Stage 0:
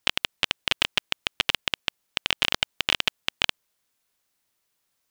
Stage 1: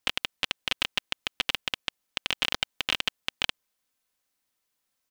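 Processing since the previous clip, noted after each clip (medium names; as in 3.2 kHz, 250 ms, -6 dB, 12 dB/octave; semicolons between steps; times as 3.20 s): comb 3.9 ms, depth 31%; trim -4.5 dB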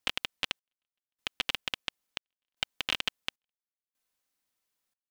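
trance gate "xxx...xxxxx..x" 76 bpm -60 dB; trim -3.5 dB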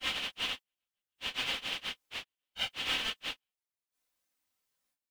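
phase randomisation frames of 100 ms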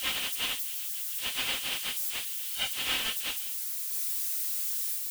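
zero-crossing glitches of -29.5 dBFS; trim +1.5 dB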